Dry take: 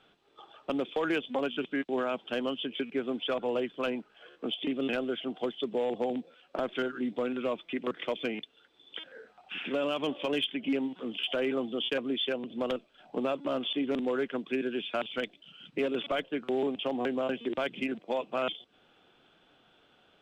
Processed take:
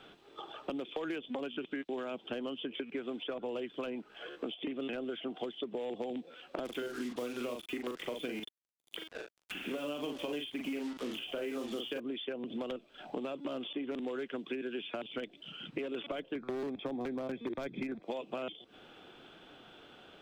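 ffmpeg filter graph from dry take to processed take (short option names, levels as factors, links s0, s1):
-filter_complex "[0:a]asettb=1/sr,asplit=3[s0][s1][s2];[s0]atrim=end=6.654[s3];[s1]atrim=start=6.65:end=12,asetpts=PTS-STARTPTS,afade=t=in:d=0.004:c=qsin,afade=t=out:st=5.346:d=0.004:c=qsin,highshelf=f=4200:g=8.5,acrusher=bits=6:mix=0:aa=0.5,asplit=2[s4][s5];[s5]adelay=41,volume=0.562[s6];[s4][s6]amix=inputs=2:normalize=0,atrim=end_sample=235935[s7];[s2]atrim=start=11.996[s8];[s3][s7]acrossfade=d=0.004:c1=hsin:c2=qsin[s9];[s9][s8]acrossfade=d=0.004:c1=qsin:c2=hsin,asettb=1/sr,asplit=3[s10][s11][s12];[s10]atrim=end=16.354[s13];[s11]atrim=start=16.35:end=18.03,asetpts=PTS-STARTPTS,afade=t=in:d=0.004:c=qsin,afade=t=out:st=1.676:d=0.004:c=qsin,asuperstop=centerf=2900:order=4:qfactor=3.7,aemphasis=mode=reproduction:type=bsi,aeval=exprs='0.0794*(abs(mod(val(0)/0.0794+3,4)-2)-1)':c=same[s14];[s12]atrim=start=18.026[s15];[s13][s14]acrossfade=d=0.004:c1=hsin:c2=qsin[s16];[s16][s15]acrossfade=d=0.004:c1=qsin:c2=hsin,acompressor=threshold=0.00794:ratio=2.5,equalizer=f=340:t=o:w=0.77:g=3.5,acrossover=split=640|2400[s17][s18][s19];[s17]acompressor=threshold=0.00562:ratio=4[s20];[s18]acompressor=threshold=0.002:ratio=4[s21];[s19]acompressor=threshold=0.00141:ratio=4[s22];[s20][s21][s22]amix=inputs=3:normalize=0,volume=2.37"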